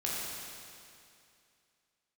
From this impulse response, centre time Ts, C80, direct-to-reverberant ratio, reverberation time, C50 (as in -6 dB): 0.158 s, -1.5 dB, -6.0 dB, 2.5 s, -3.0 dB